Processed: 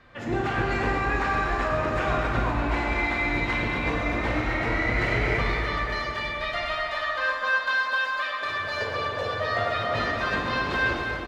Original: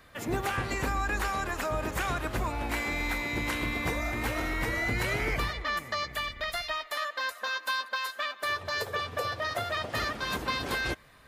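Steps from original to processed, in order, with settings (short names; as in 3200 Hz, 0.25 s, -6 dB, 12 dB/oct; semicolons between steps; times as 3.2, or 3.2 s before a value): air absorption 170 m; speakerphone echo 0.24 s, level -6 dB; plate-style reverb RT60 2.6 s, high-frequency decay 0.75×, DRR -2.5 dB; gain +1.5 dB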